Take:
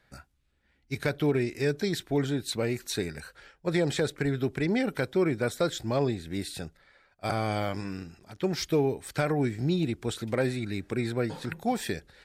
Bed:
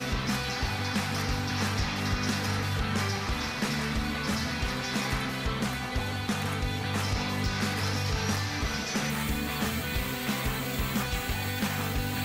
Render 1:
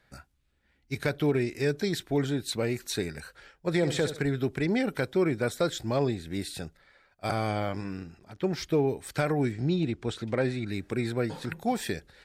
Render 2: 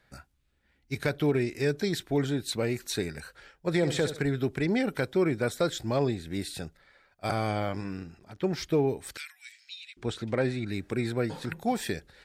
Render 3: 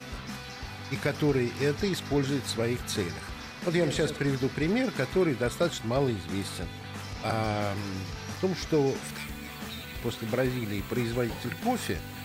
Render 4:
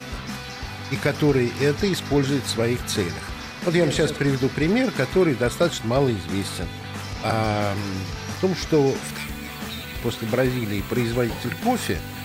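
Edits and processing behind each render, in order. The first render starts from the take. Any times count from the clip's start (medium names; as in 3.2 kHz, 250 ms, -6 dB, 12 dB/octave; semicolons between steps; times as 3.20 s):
3.76–4.22 s: flutter echo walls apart 11.8 m, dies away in 0.4 s; 7.51–8.88 s: treble shelf 3.8 kHz -7.5 dB; 9.52–10.68 s: distance through air 67 m
9.17–9.97 s: inverse Chebyshev high-pass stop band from 510 Hz, stop band 70 dB
add bed -9.5 dB
trim +6.5 dB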